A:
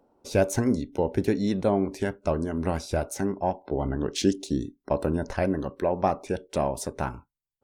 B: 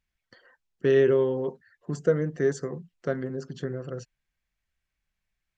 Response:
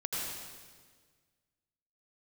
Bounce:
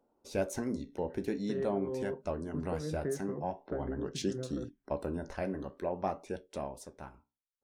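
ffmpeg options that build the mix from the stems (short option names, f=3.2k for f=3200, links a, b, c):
-filter_complex "[0:a]equalizer=f=110:t=o:w=0.25:g=-13.5,flanger=delay=8.5:depth=7.7:regen=-69:speed=0.47:shape=sinusoidal,volume=-5.5dB,afade=t=out:st=6.34:d=0.59:silence=0.421697,asplit=2[a][b];[1:a]lowpass=1.5k,acompressor=threshold=-27dB:ratio=6,adelay=650,volume=-4.5dB[c];[b]apad=whole_len=274461[d];[c][d]sidechaincompress=threshold=-36dB:ratio=8:attack=8.4:release=106[e];[a][e]amix=inputs=2:normalize=0"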